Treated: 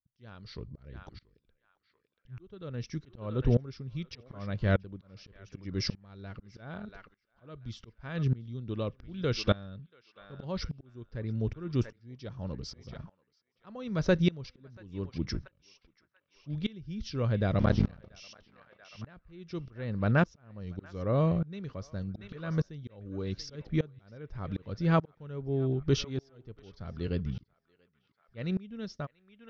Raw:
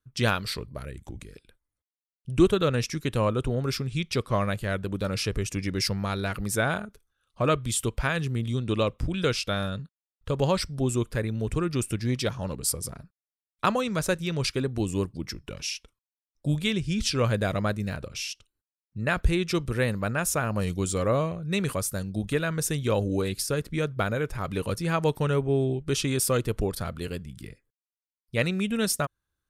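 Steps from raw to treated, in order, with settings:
0:17.59–0:18.18: sub-harmonics by changed cycles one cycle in 3, muted
Butterworth low-pass 5,900 Hz 72 dB per octave
low-shelf EQ 480 Hz +9.5 dB
notch filter 2,500 Hz, Q 15
volume swells 498 ms
feedback echo with a band-pass in the loop 685 ms, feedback 46%, band-pass 1,600 Hz, level −13.5 dB
tremolo with a ramp in dB swelling 0.84 Hz, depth 24 dB

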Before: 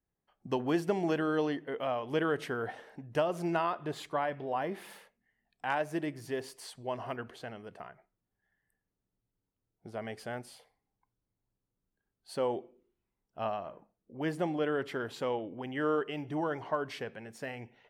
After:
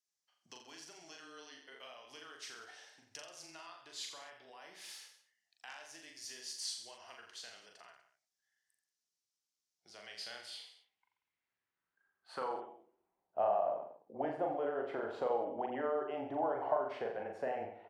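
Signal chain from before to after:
downward compressor, threshold −38 dBFS, peak gain reduction 13 dB
band-pass filter sweep 5,700 Hz → 710 Hz, 0:09.74–0:13.24
frequency shifter −14 Hz
pitch vibrato 6.4 Hz 13 cents
reverse bouncing-ball delay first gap 40 ms, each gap 1.1×, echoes 5
level +10.5 dB

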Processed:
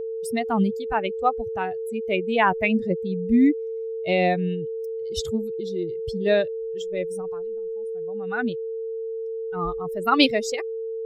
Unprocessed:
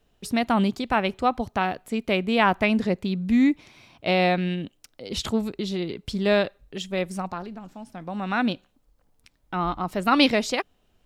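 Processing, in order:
spectral dynamics exaggerated over time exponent 2
steady tone 450 Hz −31 dBFS
level +3.5 dB

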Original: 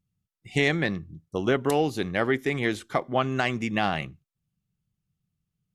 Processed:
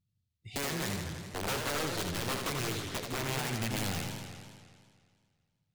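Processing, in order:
graphic EQ with 15 bands 100 Hz +11 dB, 1,000 Hz −7 dB, 4,000 Hz +9 dB
downward compressor 3 to 1, threshold −25 dBFS, peak gain reduction 7 dB
dynamic equaliser 410 Hz, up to +6 dB, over −45 dBFS, Q 5.8
wrap-around overflow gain 21.5 dB
feedback echo with a swinging delay time 82 ms, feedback 75%, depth 210 cents, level −5 dB
level −7.5 dB

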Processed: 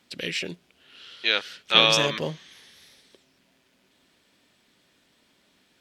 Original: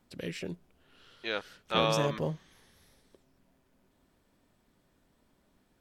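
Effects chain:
meter weighting curve D
level +4 dB

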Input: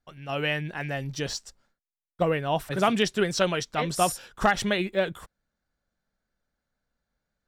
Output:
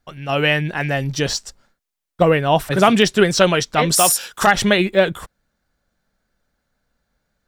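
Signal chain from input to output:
de-essing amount 55%
0:03.92–0:04.47: spectral tilt +3 dB per octave
boost into a limiter +11.5 dB
level −1 dB

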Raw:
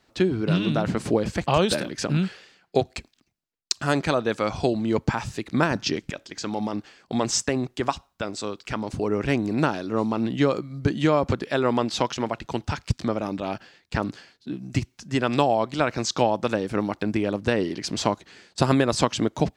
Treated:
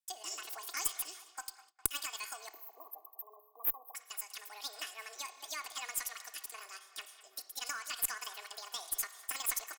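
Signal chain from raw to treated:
tape delay 407 ms, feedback 78%, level −15 dB, low-pass 2,100 Hz
time-frequency box erased 0:04.98–0:07.90, 600–6,400 Hz
spring reverb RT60 2.1 s, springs 52 ms, chirp 80 ms, DRR 11.5 dB
noise gate with hold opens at −33 dBFS
high-pass filter 290 Hz 12 dB per octave
first difference
comb filter 5.5 ms, depth 70%
tube saturation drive 14 dB, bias 0.6
wrong playback speed 7.5 ips tape played at 15 ips
level +1 dB

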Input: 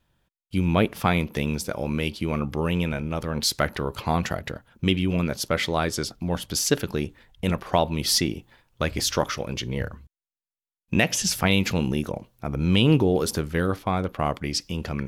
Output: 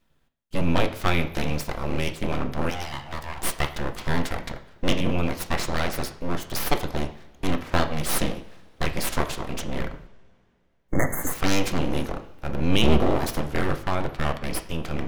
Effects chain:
sub-octave generator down 1 octave, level +2 dB
0:02.70–0:03.77: Butterworth high-pass 310 Hz 72 dB per octave
full-wave rectification
0:10.80–0:11.33: healed spectral selection 2,200–6,200 Hz both
on a send: convolution reverb, pre-delay 3 ms, DRR 7 dB

